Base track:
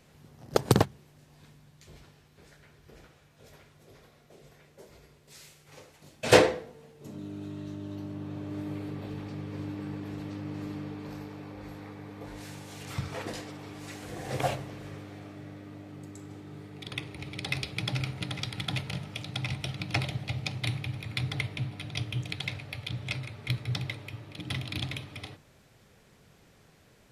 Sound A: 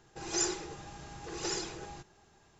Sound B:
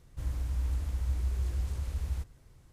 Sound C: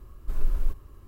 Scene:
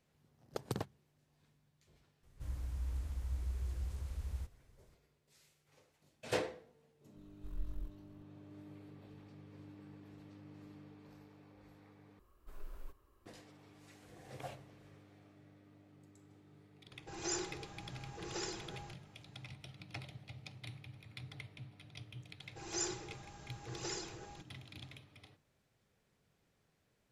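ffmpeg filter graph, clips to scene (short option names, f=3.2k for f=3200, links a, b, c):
-filter_complex "[3:a]asplit=2[a][b];[1:a]asplit=2[c][d];[0:a]volume=-17.5dB[e];[a]aeval=exprs='val(0)*sin(2*PI*22*n/s)':c=same[f];[b]bass=f=250:g=-12,treble=f=4k:g=-2[g];[c]bass=f=250:g=0,treble=f=4k:g=-3[h];[e]asplit=2[i][j];[i]atrim=end=12.194[k];[g]atrim=end=1.07,asetpts=PTS-STARTPTS,volume=-12dB[l];[j]atrim=start=13.256[m];[2:a]atrim=end=2.72,asetpts=PTS-STARTPTS,volume=-8dB,afade=t=in:d=0.004:c=hsin,afade=t=out:st=2.716:d=0.004:c=hsin,adelay=2230[n];[f]atrim=end=1.07,asetpts=PTS-STARTPTS,volume=-16dB,afade=t=in:d=0.004:c=hsin,afade=t=out:st=1.066:d=0.004:c=hsin,adelay=7160[o];[h]atrim=end=2.59,asetpts=PTS-STARTPTS,volume=-5.5dB,afade=t=in:d=0.004:c=hsin,afade=t=out:st=2.586:d=0.004:c=hsin,adelay=16910[p];[d]atrim=end=2.59,asetpts=PTS-STARTPTS,volume=-7dB,afade=t=in:d=0.004:c=hsin,afade=t=out:st=2.586:d=0.004:c=hsin,adelay=22400[q];[k][l]acrossfade=d=0.004:c1=hsin:c2=hsin[r];[r][m]acrossfade=d=0.004:c1=hsin:c2=hsin[s];[s][n][o][p][q]amix=inputs=5:normalize=0"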